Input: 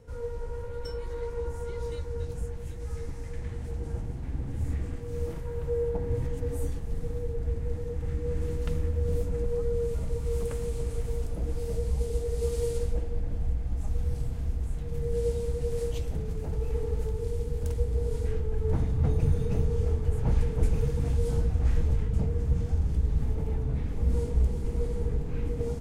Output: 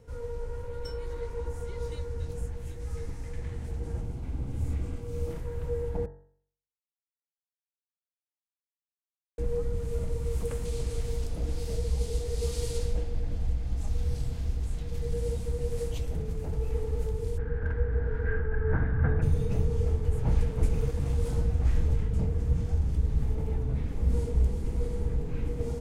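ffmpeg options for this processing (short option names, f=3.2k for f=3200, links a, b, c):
-filter_complex "[0:a]asettb=1/sr,asplit=3[a][b][c];[a]atrim=end=4.014[d];[b]atrim=start=4.01:end=5.31,asetpts=PTS-STARTPTS,afade=t=in:d=0.004:c=qsin,afade=t=out:st=1.296:d=0.004:c=qsin,bandreject=f=1.8k:w=5.2[e];[c]atrim=start=5.306[f];[d][e]acrossfade=d=0.004:c1=hsin:c2=qsin[g];[g][f]acrossfade=d=0.004:c1=qsin:c2=hsin,asettb=1/sr,asplit=3[h][i][j];[h]atrim=end=10.654[k];[i]atrim=start=10.65:end=15.14,asetpts=PTS-STARTPTS,afade=t=in:d=0.004:c=qsin,afade=t=out:st=4.486:d=0.004:c=qsin,equalizer=f=4.4k:t=o:w=1.5:g=7.5[l];[j]atrim=start=15.136[m];[k][l]acrossfade=d=0.004:c1=hsin:c2=qsin[n];[n][m]acrossfade=d=0.004:c1=qsin:c2=hsin,asplit=3[o][p][q];[o]afade=t=out:st=17.37:d=0.02[r];[p]lowpass=f=1.6k:t=q:w=14,afade=t=in:st=17.37:d=0.02,afade=t=out:st=19.21:d=0.02[s];[q]afade=t=in:st=19.21:d=0.02[t];[r][s][t]amix=inputs=3:normalize=0,asettb=1/sr,asplit=3[u][v][w];[u]atrim=end=20.454[x];[v]atrim=start=20.45:end=21.39,asetpts=PTS-STARTPTS,afade=t=in:d=0.004:c=qsin,afade=t=out:st=0.936:d=0.004:c=qsin,aeval=exprs='sgn(val(0))*max(abs(val(0))-0.0075,0)':c=same[y];[w]atrim=start=21.386[z];[x][y]acrossfade=d=0.004:c1=hsin:c2=qsin[aa];[aa][z]acrossfade=d=0.004:c1=qsin:c2=hsin,asplit=3[ab][ac][ad];[ab]atrim=end=6.06,asetpts=PTS-STARTPTS,afade=t=out:st=6.056:d=0.004:c=hsin[ae];[ac]atrim=start=6.06:end=9.38,asetpts=PTS-STARTPTS,volume=0[af];[ad]atrim=start=9.38,asetpts=PTS-STARTPTS,afade=t=in:d=0.004:c=hsin[ag];[ae][af][ag]concat=n=3:v=0:a=1,bandreject=f=47.08:t=h:w=4,bandreject=f=94.16:t=h:w=4,bandreject=f=141.24:t=h:w=4,bandreject=f=188.32:t=h:w=4,bandreject=f=235.4:t=h:w=4,bandreject=f=282.48:t=h:w=4,bandreject=f=329.56:t=h:w=4,bandreject=f=376.64:t=h:w=4,bandreject=f=423.72:t=h:w=4,bandreject=f=470.8:t=h:w=4,bandreject=f=517.88:t=h:w=4,bandreject=f=564.96:t=h:w=4,bandreject=f=612.04:t=h:w=4,bandreject=f=659.12:t=h:w=4,bandreject=f=706.2:t=h:w=4,bandreject=f=753.28:t=h:w=4,bandreject=f=800.36:t=h:w=4,bandreject=f=847.44:t=h:w=4,bandreject=f=894.52:t=h:w=4,bandreject=f=941.6:t=h:w=4,bandreject=f=988.68:t=h:w=4,bandreject=f=1.03576k:t=h:w=4,bandreject=f=1.08284k:t=h:w=4,bandreject=f=1.12992k:t=h:w=4,bandreject=f=1.177k:t=h:w=4,bandreject=f=1.22408k:t=h:w=4,bandreject=f=1.27116k:t=h:w=4,bandreject=f=1.31824k:t=h:w=4,bandreject=f=1.36532k:t=h:w=4,bandreject=f=1.4124k:t=h:w=4,bandreject=f=1.45948k:t=h:w=4,bandreject=f=1.50656k:t=h:w=4,bandreject=f=1.55364k:t=h:w=4,bandreject=f=1.60072k:t=h:w=4,bandreject=f=1.6478k:t=h:w=4,bandreject=f=1.69488k:t=h:w=4,bandreject=f=1.74196k:t=h:w=4,bandreject=f=1.78904k:t=h:w=4,bandreject=f=1.83612k:t=h:w=4,bandreject=f=1.8832k:t=h:w=4"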